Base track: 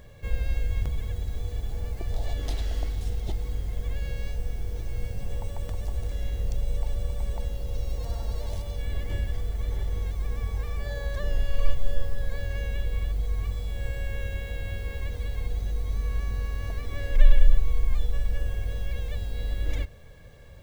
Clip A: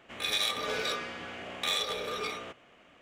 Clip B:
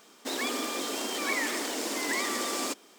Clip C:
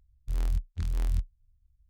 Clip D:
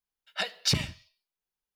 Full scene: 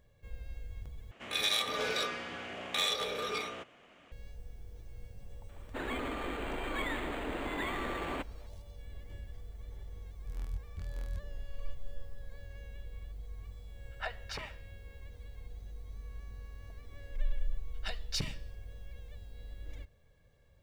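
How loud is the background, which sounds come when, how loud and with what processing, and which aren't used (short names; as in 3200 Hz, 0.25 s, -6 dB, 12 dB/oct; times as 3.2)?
base track -17 dB
1.11 replace with A -1 dB
5.49 add B -4.5 dB + decimation joined by straight lines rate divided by 8×
9.99 add C -11.5 dB
13.64 add D -2 dB + three-band isolator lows -23 dB, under 500 Hz, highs -19 dB, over 2000 Hz
17.47 add D -10 dB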